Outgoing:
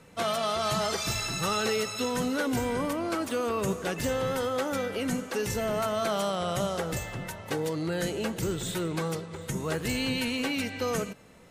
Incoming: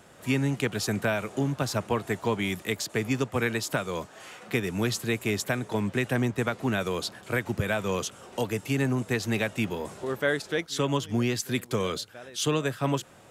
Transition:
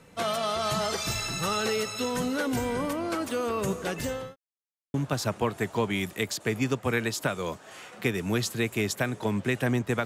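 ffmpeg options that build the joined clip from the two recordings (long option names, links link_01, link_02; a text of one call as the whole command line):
ffmpeg -i cue0.wav -i cue1.wav -filter_complex "[0:a]apad=whole_dur=10.05,atrim=end=10.05,asplit=2[link_01][link_02];[link_01]atrim=end=4.36,asetpts=PTS-STARTPTS,afade=type=out:start_time=3.84:duration=0.52:curve=qsin[link_03];[link_02]atrim=start=4.36:end=4.94,asetpts=PTS-STARTPTS,volume=0[link_04];[1:a]atrim=start=1.43:end=6.54,asetpts=PTS-STARTPTS,afade=type=in:duration=0.004:curve=hsin[link_05];[link_03][link_04][link_05]concat=n=3:v=0:a=1" out.wav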